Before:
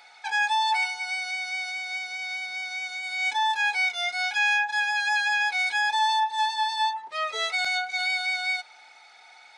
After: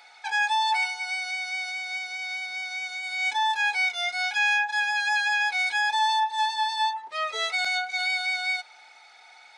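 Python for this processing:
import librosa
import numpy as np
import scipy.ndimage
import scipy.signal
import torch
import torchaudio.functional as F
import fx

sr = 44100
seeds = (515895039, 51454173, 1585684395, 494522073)

y = fx.highpass(x, sr, hz=160.0, slope=6)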